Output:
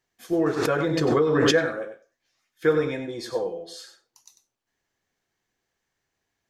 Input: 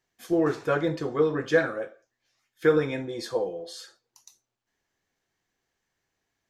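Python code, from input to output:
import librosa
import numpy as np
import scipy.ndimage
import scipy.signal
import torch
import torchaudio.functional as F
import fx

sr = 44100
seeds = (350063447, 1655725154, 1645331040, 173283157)

p1 = x + fx.echo_single(x, sr, ms=96, db=-9.5, dry=0)
y = fx.pre_swell(p1, sr, db_per_s=21.0, at=(0.56, 1.51), fade=0.02)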